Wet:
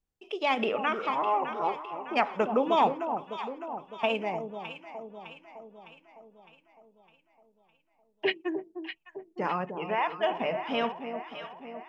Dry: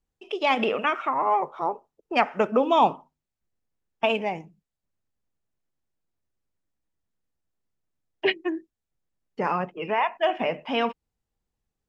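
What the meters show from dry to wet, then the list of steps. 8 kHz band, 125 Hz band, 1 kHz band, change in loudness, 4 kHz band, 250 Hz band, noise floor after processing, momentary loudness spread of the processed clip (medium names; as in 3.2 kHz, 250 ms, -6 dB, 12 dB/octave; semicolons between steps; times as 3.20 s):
no reading, -3.5 dB, -3.5 dB, -5.0 dB, -4.0 dB, -3.5 dB, -72 dBFS, 16 LU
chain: echo whose repeats swap between lows and highs 304 ms, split 940 Hz, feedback 72%, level -7 dB; trim -4.5 dB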